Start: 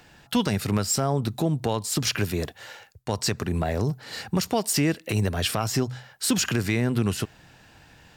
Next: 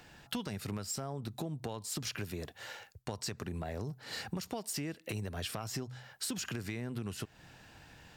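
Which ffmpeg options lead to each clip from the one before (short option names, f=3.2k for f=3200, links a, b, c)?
-af "acompressor=threshold=-33dB:ratio=5,volume=-3.5dB"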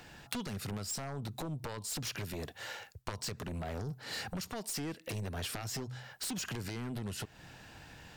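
-af "aeval=exprs='0.0891*(cos(1*acos(clip(val(0)/0.0891,-1,1)))-cos(1*PI/2))+0.0398*(cos(3*acos(clip(val(0)/0.0891,-1,1)))-cos(3*PI/2))+0.00398*(cos(7*acos(clip(val(0)/0.0891,-1,1)))-cos(7*PI/2))':c=same,volume=7dB"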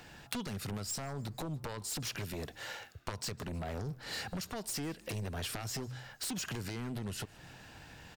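-filter_complex "[0:a]asplit=5[a][b][c][d][e];[b]adelay=155,afreqshift=-110,volume=-23.5dB[f];[c]adelay=310,afreqshift=-220,volume=-28.4dB[g];[d]adelay=465,afreqshift=-330,volume=-33.3dB[h];[e]adelay=620,afreqshift=-440,volume=-38.1dB[i];[a][f][g][h][i]amix=inputs=5:normalize=0"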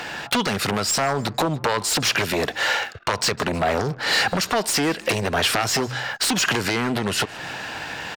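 -filter_complex "[0:a]asplit=2[a][b];[b]highpass=f=720:p=1,volume=25dB,asoftclip=type=tanh:threshold=-11.5dB[c];[a][c]amix=inputs=2:normalize=0,lowpass=f=3.1k:p=1,volume=-6dB,anlmdn=0.00631,volume=6.5dB"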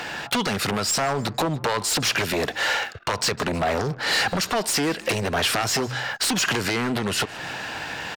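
-af "asoftclip=type=tanh:threshold=-15.5dB"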